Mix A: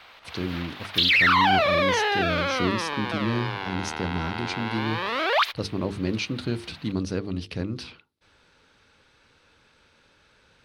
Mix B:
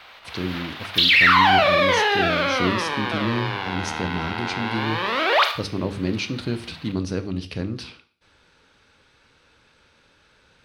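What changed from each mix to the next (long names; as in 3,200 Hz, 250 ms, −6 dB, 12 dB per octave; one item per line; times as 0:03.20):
reverb: on, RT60 0.50 s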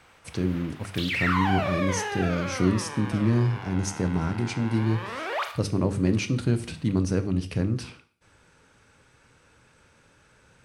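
background −10.5 dB
master: add graphic EQ with 10 bands 125 Hz +6 dB, 4,000 Hz −10 dB, 8,000 Hz +9 dB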